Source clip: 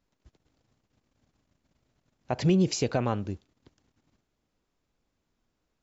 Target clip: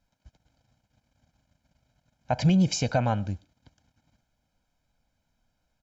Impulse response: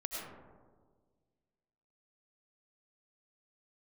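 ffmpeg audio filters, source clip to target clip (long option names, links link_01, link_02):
-filter_complex "[0:a]aecho=1:1:1.3:0.78,asplit=2[link_01][link_02];[1:a]atrim=start_sample=2205,atrim=end_sample=6174[link_03];[link_02][link_03]afir=irnorm=-1:irlink=0,volume=-22dB[link_04];[link_01][link_04]amix=inputs=2:normalize=0" -ar 48000 -c:a libopus -b:a 256k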